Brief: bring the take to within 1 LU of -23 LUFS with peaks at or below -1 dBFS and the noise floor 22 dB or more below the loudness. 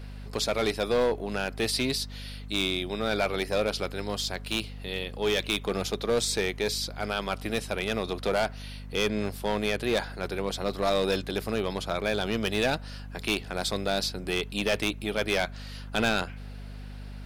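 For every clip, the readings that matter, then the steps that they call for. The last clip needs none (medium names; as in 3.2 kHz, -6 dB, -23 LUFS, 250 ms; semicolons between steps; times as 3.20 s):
clipped samples 1.0%; clipping level -19.0 dBFS; hum 50 Hz; highest harmonic 250 Hz; hum level -38 dBFS; loudness -29.0 LUFS; peak level -19.0 dBFS; loudness target -23.0 LUFS
-> clip repair -19 dBFS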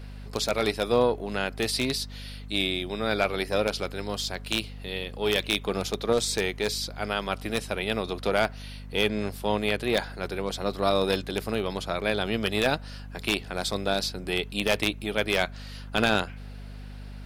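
clipped samples 0.0%; hum 50 Hz; highest harmonic 250 Hz; hum level -38 dBFS
-> hum notches 50/100/150/200/250 Hz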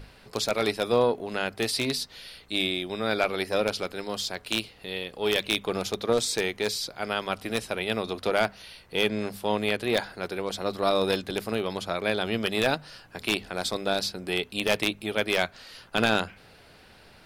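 hum not found; loudness -28.0 LUFS; peak level -9.5 dBFS; loudness target -23.0 LUFS
-> trim +5 dB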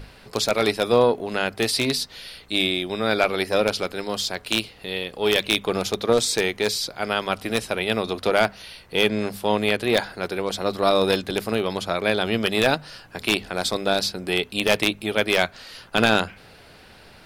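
loudness -23.0 LUFS; peak level -4.5 dBFS; noise floor -49 dBFS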